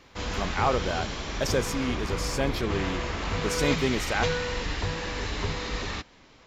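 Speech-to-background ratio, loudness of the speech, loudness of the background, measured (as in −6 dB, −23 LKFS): 1.0 dB, −30.0 LKFS, −31.0 LKFS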